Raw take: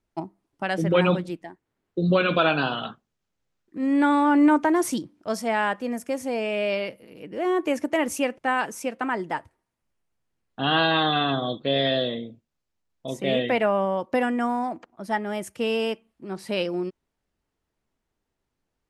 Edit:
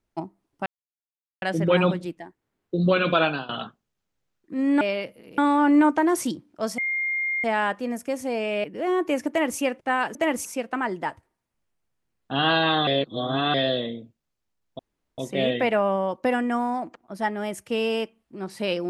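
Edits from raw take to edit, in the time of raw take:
0.66 s: insert silence 0.76 s
2.47–2.73 s: fade out, to -19 dB
5.45 s: add tone 2.12 kHz -23 dBFS 0.66 s
6.65–7.22 s: move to 4.05 s
7.87–8.17 s: copy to 8.73 s
11.15–11.82 s: reverse
13.07 s: insert room tone 0.39 s

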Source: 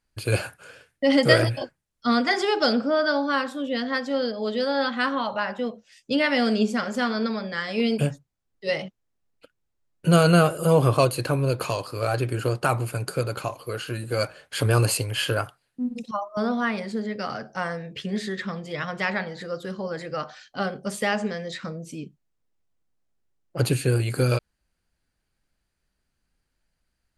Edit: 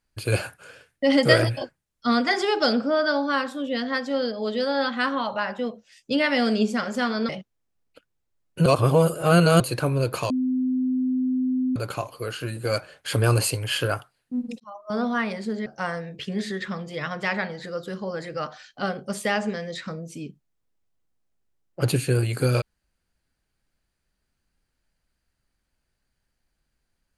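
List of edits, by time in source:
7.29–8.76 s: delete
10.13–11.07 s: reverse
11.77–13.23 s: bleep 256 Hz -20.5 dBFS
16.07–16.49 s: fade in
17.13–17.43 s: delete

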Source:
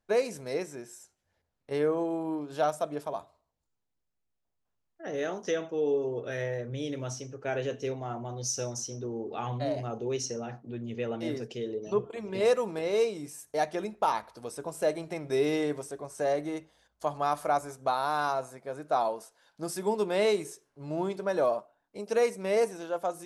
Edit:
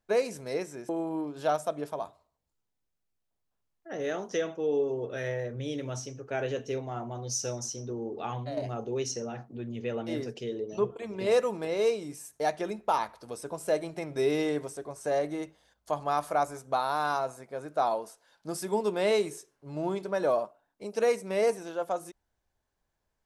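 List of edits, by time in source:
0.89–2.03 s: delete
9.41–9.71 s: fade out, to -7 dB

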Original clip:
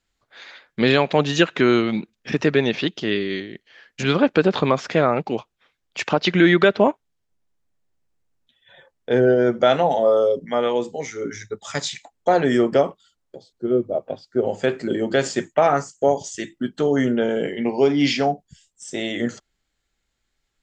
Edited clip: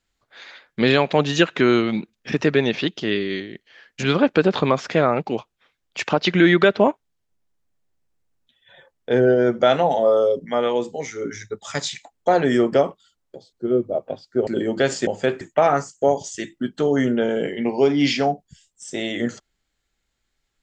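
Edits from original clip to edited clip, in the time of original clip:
14.47–14.81 s: move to 15.41 s

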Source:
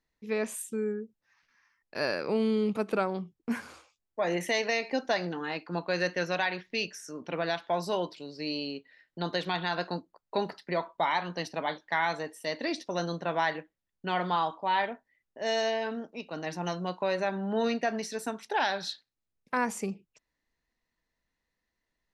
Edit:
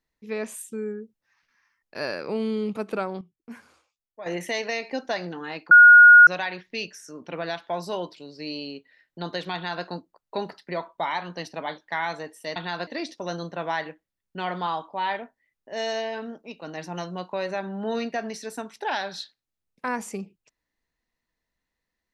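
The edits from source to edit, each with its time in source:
3.21–4.26 s: gain -10 dB
5.71–6.27 s: bleep 1.44 kHz -6.5 dBFS
9.54–9.85 s: copy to 12.56 s

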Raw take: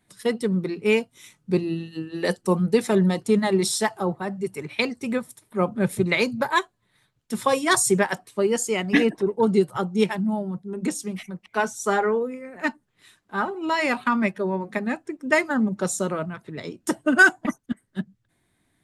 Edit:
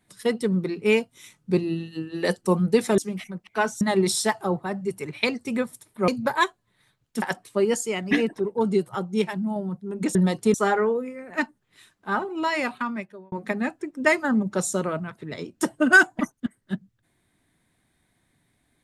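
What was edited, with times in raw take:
2.98–3.37 s: swap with 10.97–11.80 s
5.64–6.23 s: delete
7.37–8.04 s: delete
8.59–10.38 s: gain -3 dB
13.58–14.58 s: fade out

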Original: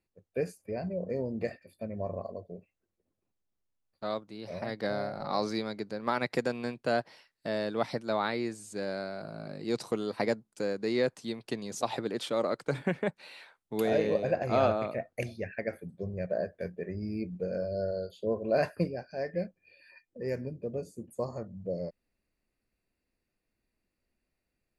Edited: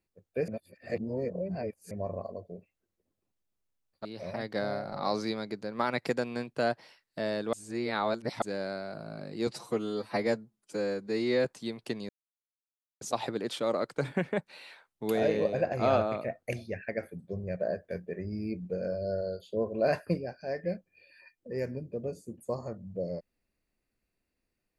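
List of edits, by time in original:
0.48–1.91 s: reverse
4.05–4.33 s: delete
7.81–8.70 s: reverse
9.75–11.07 s: stretch 1.5×
11.71 s: insert silence 0.92 s

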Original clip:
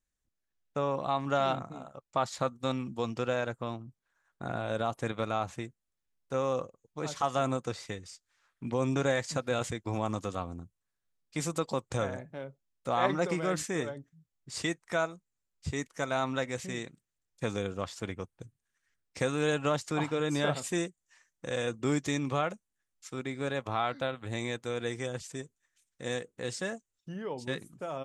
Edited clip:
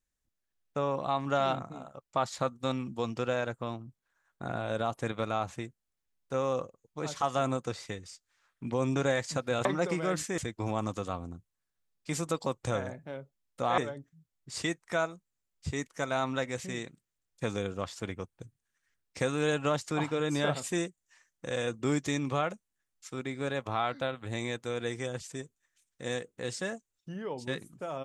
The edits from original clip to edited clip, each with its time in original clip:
13.05–13.78 s: move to 9.65 s

